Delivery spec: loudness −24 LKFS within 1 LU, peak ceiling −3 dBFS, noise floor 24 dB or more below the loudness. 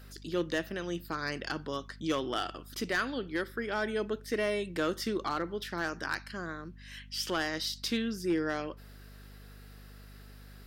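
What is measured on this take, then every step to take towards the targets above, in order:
share of clipped samples 0.3%; peaks flattened at −22.5 dBFS; mains hum 50 Hz; hum harmonics up to 250 Hz; level of the hum −49 dBFS; integrated loudness −34.0 LKFS; sample peak −22.5 dBFS; target loudness −24.0 LKFS
→ clipped peaks rebuilt −22.5 dBFS
hum removal 50 Hz, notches 5
level +10 dB

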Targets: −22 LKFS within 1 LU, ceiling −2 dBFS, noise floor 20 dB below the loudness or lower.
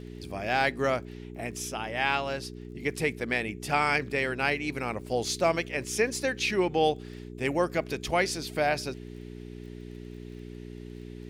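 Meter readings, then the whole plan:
crackle rate 29 per second; mains hum 60 Hz; hum harmonics up to 420 Hz; level of the hum −39 dBFS; integrated loudness −29.0 LKFS; sample peak −11.5 dBFS; target loudness −22.0 LKFS
→ click removal
hum removal 60 Hz, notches 7
level +7 dB

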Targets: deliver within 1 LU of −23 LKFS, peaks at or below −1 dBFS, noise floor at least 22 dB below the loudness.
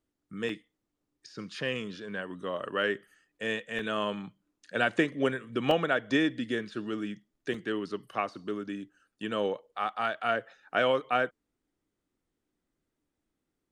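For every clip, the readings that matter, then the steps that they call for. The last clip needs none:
number of dropouts 4; longest dropout 2.4 ms; integrated loudness −31.5 LKFS; sample peak −11.0 dBFS; target loudness −23.0 LKFS
→ repair the gap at 0:00.49/0:03.79/0:05.71/0:07.54, 2.4 ms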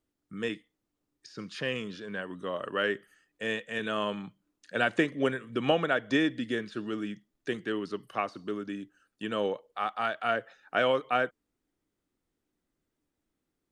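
number of dropouts 0; integrated loudness −31.5 LKFS; sample peak −11.0 dBFS; target loudness −23.0 LKFS
→ level +8.5 dB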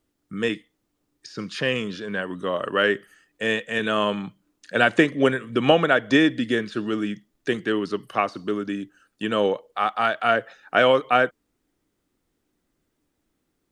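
integrated loudness −23.0 LKFS; sample peak −2.5 dBFS; background noise floor −75 dBFS

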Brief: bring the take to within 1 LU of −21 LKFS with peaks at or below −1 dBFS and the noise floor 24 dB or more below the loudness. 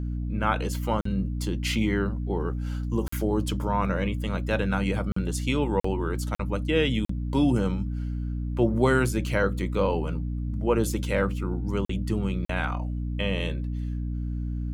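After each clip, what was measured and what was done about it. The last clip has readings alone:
number of dropouts 8; longest dropout 44 ms; mains hum 60 Hz; hum harmonics up to 300 Hz; level of the hum −27 dBFS; integrated loudness −27.5 LKFS; sample peak −8.5 dBFS; target loudness −21.0 LKFS
→ repair the gap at 0:01.01/0:03.08/0:05.12/0:05.80/0:06.35/0:07.05/0:11.85/0:12.45, 44 ms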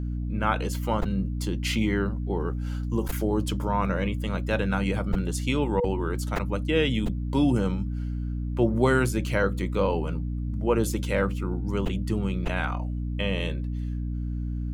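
number of dropouts 0; mains hum 60 Hz; hum harmonics up to 300 Hz; level of the hum −27 dBFS
→ hum removal 60 Hz, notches 5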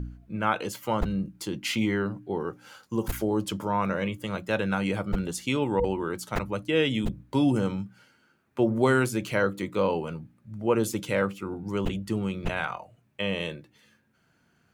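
mains hum none found; integrated loudness −28.5 LKFS; sample peak −9.5 dBFS; target loudness −21.0 LKFS
→ level +7.5 dB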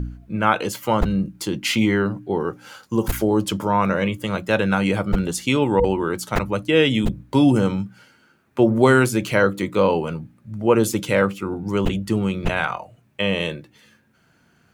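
integrated loudness −21.0 LKFS; sample peak −2.0 dBFS; background noise floor −60 dBFS

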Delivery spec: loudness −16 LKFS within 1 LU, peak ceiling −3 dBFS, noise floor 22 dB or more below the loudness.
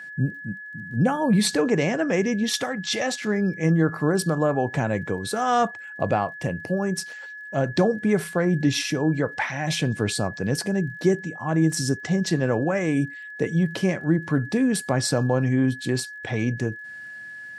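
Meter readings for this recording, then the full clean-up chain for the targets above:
crackle rate 34 per second; interfering tone 1,700 Hz; level of the tone −36 dBFS; integrated loudness −24.0 LKFS; sample peak −9.0 dBFS; target loudness −16.0 LKFS
→ click removal
notch filter 1,700 Hz, Q 30
level +8 dB
brickwall limiter −3 dBFS

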